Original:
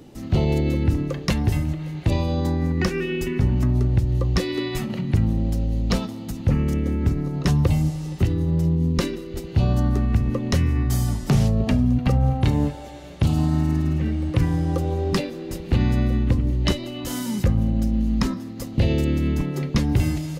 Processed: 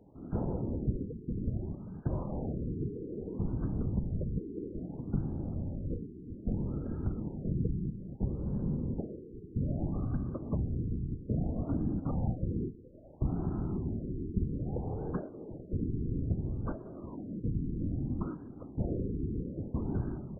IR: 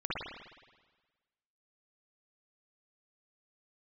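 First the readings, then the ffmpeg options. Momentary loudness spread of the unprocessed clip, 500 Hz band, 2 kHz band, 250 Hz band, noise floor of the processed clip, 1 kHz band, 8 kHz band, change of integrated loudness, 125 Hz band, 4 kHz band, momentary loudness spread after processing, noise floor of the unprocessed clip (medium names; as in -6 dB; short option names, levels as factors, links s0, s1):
6 LU, -12.5 dB, under -25 dB, -12.0 dB, -49 dBFS, -16.0 dB, under -40 dB, -13.5 dB, -14.0 dB, under -40 dB, 7 LU, -35 dBFS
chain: -af "afftfilt=real='hypot(re,im)*cos(2*PI*random(0))':imag='hypot(re,im)*sin(2*PI*random(1))':win_size=512:overlap=0.75,afftfilt=real='re*lt(b*sr/1024,460*pow(1700/460,0.5+0.5*sin(2*PI*0.61*pts/sr)))':imag='im*lt(b*sr/1024,460*pow(1700/460,0.5+0.5*sin(2*PI*0.61*pts/sr)))':win_size=1024:overlap=0.75,volume=0.447"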